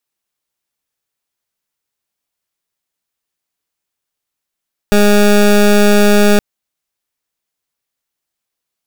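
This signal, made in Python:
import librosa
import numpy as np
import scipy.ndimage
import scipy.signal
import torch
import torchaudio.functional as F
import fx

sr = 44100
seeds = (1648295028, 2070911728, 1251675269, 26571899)

y = fx.pulse(sr, length_s=1.47, hz=206.0, level_db=-8.0, duty_pct=20)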